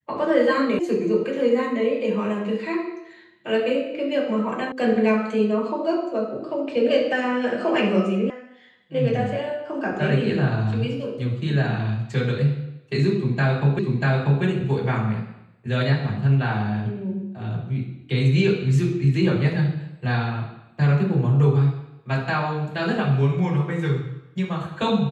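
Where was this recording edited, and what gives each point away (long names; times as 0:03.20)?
0:00.79: cut off before it has died away
0:04.72: cut off before it has died away
0:08.30: cut off before it has died away
0:13.79: the same again, the last 0.64 s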